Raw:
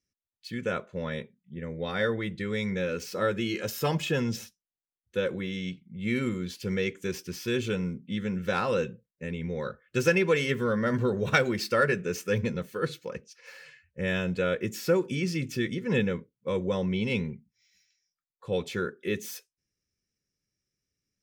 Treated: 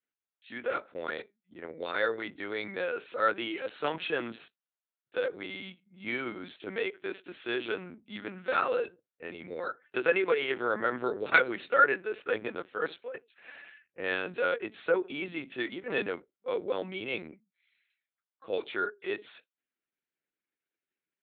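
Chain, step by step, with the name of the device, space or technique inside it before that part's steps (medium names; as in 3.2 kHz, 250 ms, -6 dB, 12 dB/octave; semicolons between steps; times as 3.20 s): talking toy (LPC vocoder at 8 kHz pitch kept; high-pass 360 Hz 12 dB/octave; peaking EQ 1.4 kHz +6 dB 0.41 oct); trim -1.5 dB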